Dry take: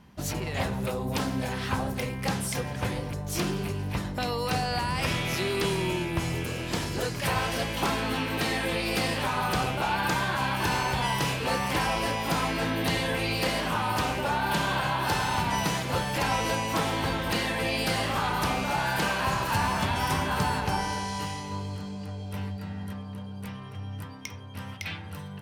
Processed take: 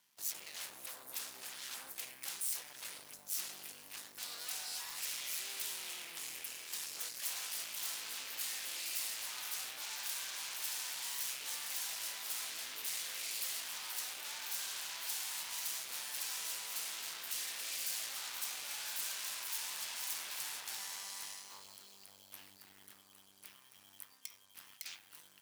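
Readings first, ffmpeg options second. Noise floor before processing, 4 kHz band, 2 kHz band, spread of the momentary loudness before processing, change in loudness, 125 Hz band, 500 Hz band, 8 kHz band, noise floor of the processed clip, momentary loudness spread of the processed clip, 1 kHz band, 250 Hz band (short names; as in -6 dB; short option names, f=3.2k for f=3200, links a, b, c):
-39 dBFS, -9.0 dB, -16.5 dB, 10 LU, -11.5 dB, under -40 dB, -30.0 dB, -1.0 dB, -63 dBFS, 15 LU, -25.0 dB, -36.5 dB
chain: -af "acrusher=bits=8:mix=0:aa=0.5,aeval=exprs='0.168*(cos(1*acos(clip(val(0)/0.168,-1,1)))-cos(1*PI/2))+0.0668*(cos(3*acos(clip(val(0)/0.168,-1,1)))-cos(3*PI/2))+0.0473*(cos(5*acos(clip(val(0)/0.168,-1,1)))-cos(5*PI/2))+0.0531*(cos(8*acos(clip(val(0)/0.168,-1,1)))-cos(8*PI/2))':c=same,aderivative,volume=-8.5dB"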